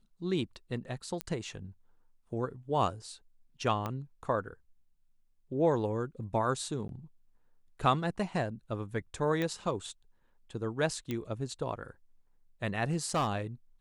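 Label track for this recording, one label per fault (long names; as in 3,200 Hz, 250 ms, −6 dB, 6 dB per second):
1.210000	1.210000	click −17 dBFS
3.860000	3.860000	click −21 dBFS
6.880000	6.890000	drop-out 12 ms
9.420000	9.420000	click −20 dBFS
11.110000	11.110000	click −21 dBFS
12.850000	13.300000	clipping −24.5 dBFS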